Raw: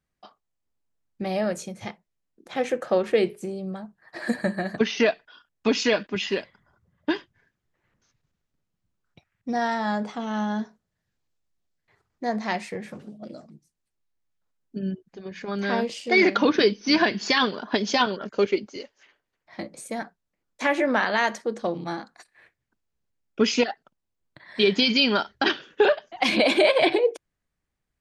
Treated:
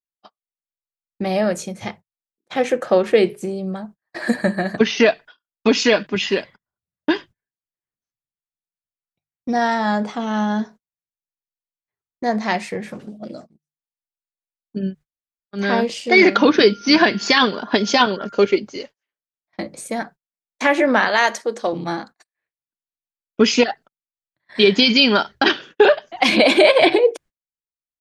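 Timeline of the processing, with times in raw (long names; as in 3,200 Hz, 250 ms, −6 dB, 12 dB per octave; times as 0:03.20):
0:14.90–0:15.56: fill with room tone, crossfade 0.10 s
0:16.25–0:18.55: steady tone 1,400 Hz −46 dBFS
0:21.08–0:21.73: bass and treble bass −13 dB, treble +4 dB
whole clip: mains-hum notches 50/100/150 Hz; noise gate −45 dBFS, range −34 dB; level +6.5 dB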